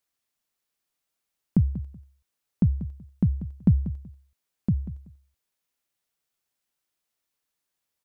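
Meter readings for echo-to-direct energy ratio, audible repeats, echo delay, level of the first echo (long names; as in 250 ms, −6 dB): −14.0 dB, 2, 189 ms, −14.0 dB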